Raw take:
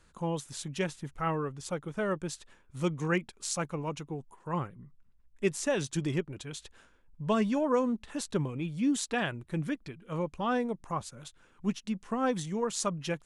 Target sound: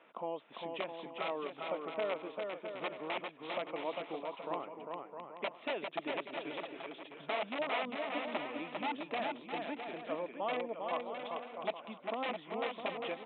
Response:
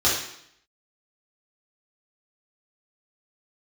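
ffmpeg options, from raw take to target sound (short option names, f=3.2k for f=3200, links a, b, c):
-af "aresample=8000,aeval=exprs='(mod(13.3*val(0)+1,2)-1)/13.3':c=same,aresample=44100,acompressor=threshold=-47dB:ratio=3,highpass=f=290:w=0.5412,highpass=f=290:w=1.3066,equalizer=f=370:t=q:w=4:g=-4,equalizer=f=660:t=q:w=4:g=9,equalizer=f=1.6k:t=q:w=4:g=-9,equalizer=f=2.3k:t=q:w=4:g=3,lowpass=f=3.1k:w=0.5412,lowpass=f=3.1k:w=1.3066,aecho=1:1:400|660|829|938.8|1010:0.631|0.398|0.251|0.158|0.1,volume=7dB"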